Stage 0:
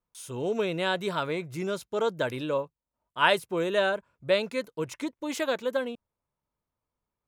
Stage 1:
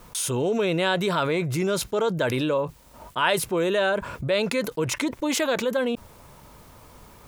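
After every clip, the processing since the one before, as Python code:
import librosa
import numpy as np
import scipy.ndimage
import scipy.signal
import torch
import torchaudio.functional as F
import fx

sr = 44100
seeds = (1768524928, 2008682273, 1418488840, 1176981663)

y = fx.env_flatten(x, sr, amount_pct=70)
y = y * librosa.db_to_amplitude(-1.5)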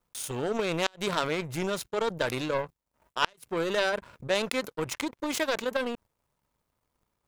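y = fx.power_curve(x, sr, exponent=2.0)
y = fx.gate_flip(y, sr, shuts_db=-13.0, range_db=-35)
y = y * librosa.db_to_amplitude(6.5)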